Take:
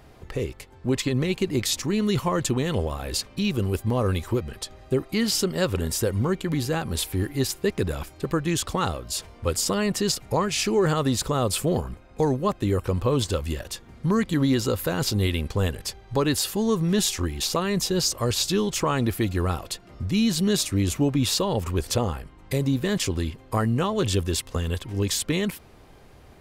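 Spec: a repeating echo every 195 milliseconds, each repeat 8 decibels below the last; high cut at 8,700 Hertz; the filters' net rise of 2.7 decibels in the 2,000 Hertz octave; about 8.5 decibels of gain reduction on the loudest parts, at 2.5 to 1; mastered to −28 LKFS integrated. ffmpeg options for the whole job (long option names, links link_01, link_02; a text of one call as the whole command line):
ffmpeg -i in.wav -af "lowpass=8700,equalizer=frequency=2000:width_type=o:gain=3.5,acompressor=threshold=-31dB:ratio=2.5,aecho=1:1:195|390|585|780|975:0.398|0.159|0.0637|0.0255|0.0102,volume=3.5dB" out.wav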